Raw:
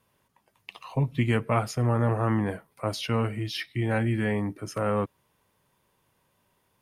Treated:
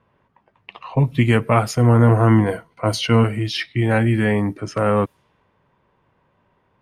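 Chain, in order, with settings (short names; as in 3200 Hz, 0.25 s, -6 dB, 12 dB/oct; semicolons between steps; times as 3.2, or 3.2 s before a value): low-pass opened by the level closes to 1900 Hz, open at -25 dBFS; 1.75–3.24 ripple EQ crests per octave 1.9, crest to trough 8 dB; gain +8.5 dB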